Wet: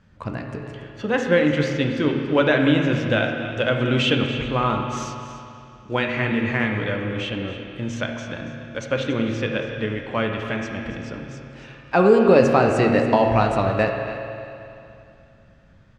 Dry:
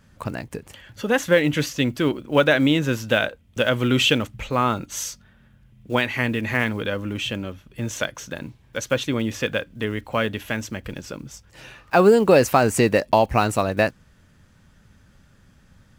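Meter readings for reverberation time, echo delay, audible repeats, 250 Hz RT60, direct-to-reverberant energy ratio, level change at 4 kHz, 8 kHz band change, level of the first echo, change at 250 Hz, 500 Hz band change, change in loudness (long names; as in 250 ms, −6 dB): 2.7 s, 282 ms, 1, 2.7 s, 1.5 dB, −2.5 dB, −10.5 dB, −14.0 dB, +1.5 dB, +0.5 dB, 0.0 dB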